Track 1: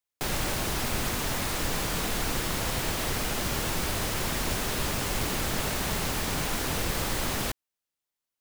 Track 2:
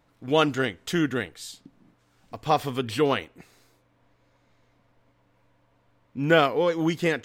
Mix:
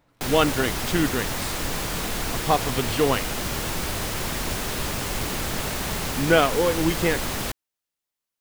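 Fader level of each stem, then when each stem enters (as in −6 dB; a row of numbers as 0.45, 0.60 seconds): +1.5, +1.0 decibels; 0.00, 0.00 seconds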